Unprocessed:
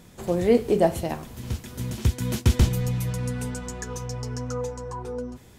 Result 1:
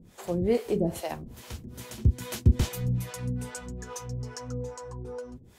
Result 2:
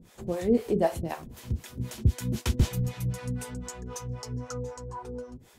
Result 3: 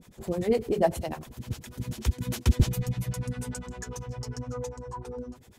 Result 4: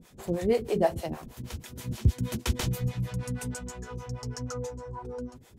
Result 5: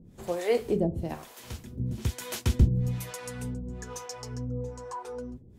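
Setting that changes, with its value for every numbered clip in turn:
harmonic tremolo, rate: 2.4 Hz, 3.9 Hz, 10 Hz, 6.3 Hz, 1.1 Hz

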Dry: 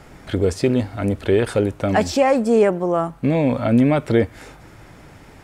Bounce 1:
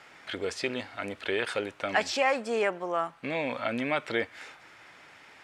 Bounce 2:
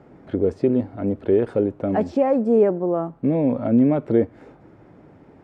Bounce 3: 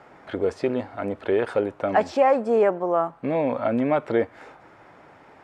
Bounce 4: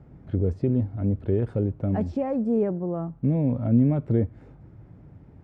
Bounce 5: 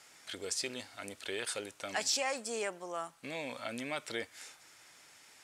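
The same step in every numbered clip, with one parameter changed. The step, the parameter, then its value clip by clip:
band-pass filter, frequency: 2.5 kHz, 320 Hz, 880 Hz, 110 Hz, 7.2 kHz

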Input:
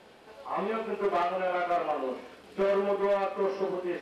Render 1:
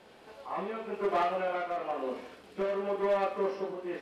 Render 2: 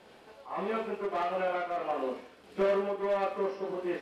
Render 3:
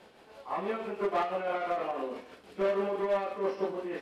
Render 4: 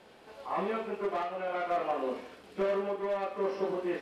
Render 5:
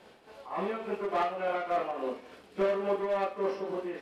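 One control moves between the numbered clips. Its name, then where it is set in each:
tremolo, rate: 1 Hz, 1.6 Hz, 6.1 Hz, 0.58 Hz, 3.5 Hz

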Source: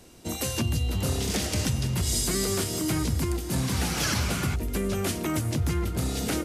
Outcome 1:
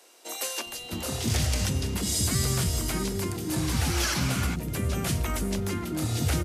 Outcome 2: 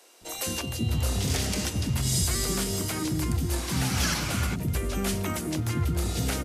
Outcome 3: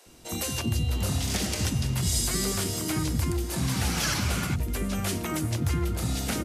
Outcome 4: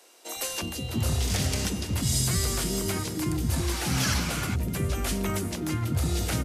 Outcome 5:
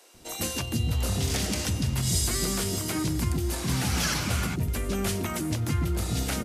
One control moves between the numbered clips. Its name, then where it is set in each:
bands offset in time, time: 660 ms, 210 ms, 60 ms, 360 ms, 140 ms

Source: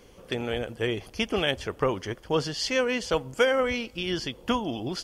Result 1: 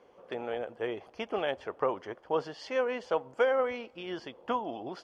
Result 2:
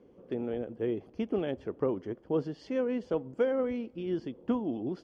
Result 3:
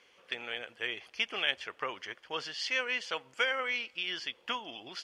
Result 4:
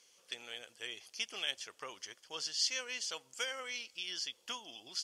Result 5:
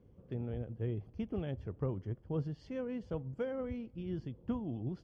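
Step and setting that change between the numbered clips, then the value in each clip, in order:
band-pass filter, frequency: 770 Hz, 290 Hz, 2.3 kHz, 6.3 kHz, 110 Hz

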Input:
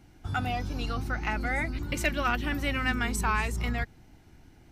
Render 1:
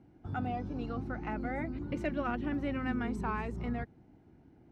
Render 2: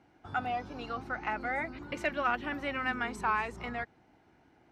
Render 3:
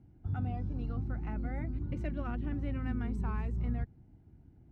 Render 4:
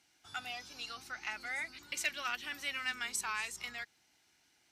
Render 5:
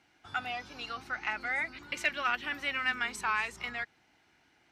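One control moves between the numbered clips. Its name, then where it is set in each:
band-pass filter, frequency: 290 Hz, 820 Hz, 110 Hz, 5.9 kHz, 2.2 kHz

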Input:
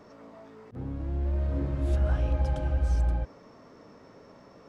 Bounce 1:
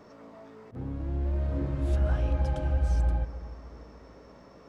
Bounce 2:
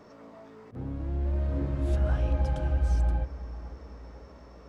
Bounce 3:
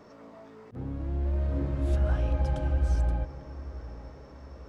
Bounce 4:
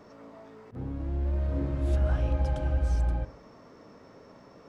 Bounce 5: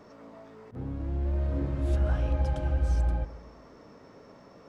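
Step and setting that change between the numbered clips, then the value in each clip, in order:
feedback echo behind a low-pass, time: 297 ms, 501 ms, 849 ms, 61 ms, 126 ms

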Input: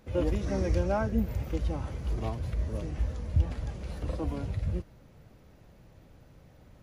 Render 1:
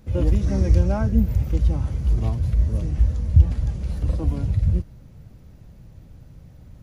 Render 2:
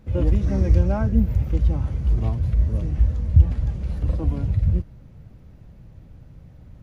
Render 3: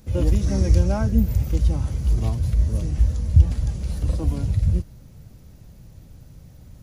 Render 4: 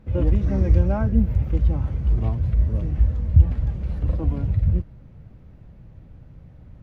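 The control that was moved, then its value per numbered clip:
tone controls, treble: +5 dB, -3 dB, +14 dB, -12 dB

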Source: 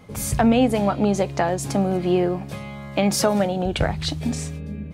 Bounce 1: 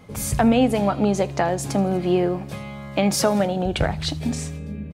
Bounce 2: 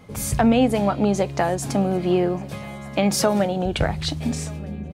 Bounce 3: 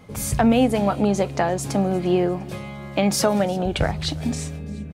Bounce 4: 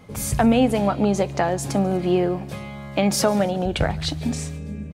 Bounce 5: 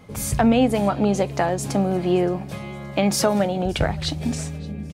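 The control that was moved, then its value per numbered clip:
feedback delay, time: 81 ms, 1231 ms, 349 ms, 143 ms, 571 ms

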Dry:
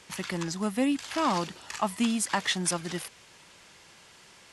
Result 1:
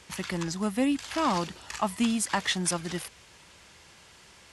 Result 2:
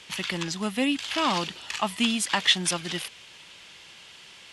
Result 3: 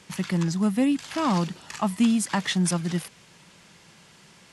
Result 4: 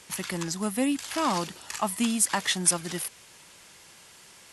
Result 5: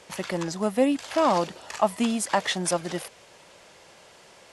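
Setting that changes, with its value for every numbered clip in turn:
peaking EQ, frequency: 63 Hz, 3.1 kHz, 170 Hz, 12 kHz, 580 Hz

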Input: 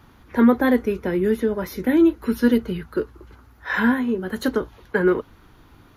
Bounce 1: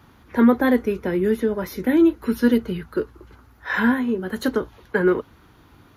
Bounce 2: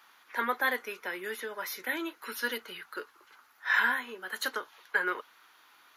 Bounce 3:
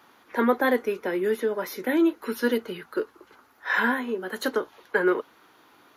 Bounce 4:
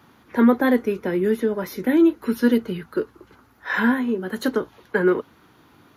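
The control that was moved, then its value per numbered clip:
high-pass, cutoff frequency: 52 Hz, 1.2 kHz, 420 Hz, 150 Hz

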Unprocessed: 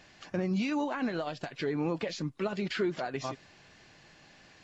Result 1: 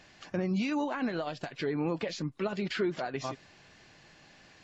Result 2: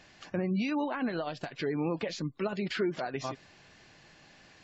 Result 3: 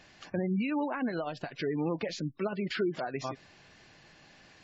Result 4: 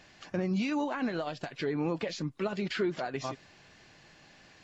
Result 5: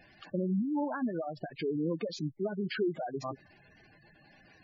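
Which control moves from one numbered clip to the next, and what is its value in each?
spectral gate, under each frame's peak: -50 dB, -35 dB, -25 dB, -60 dB, -10 dB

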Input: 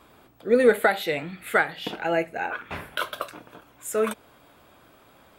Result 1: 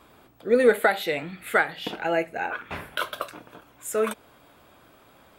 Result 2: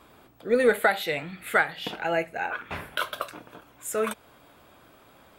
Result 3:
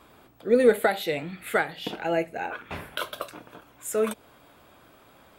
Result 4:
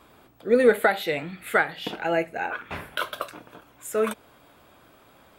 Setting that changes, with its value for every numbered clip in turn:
dynamic bell, frequency: 110 Hz, 310 Hz, 1.5 kHz, 8.2 kHz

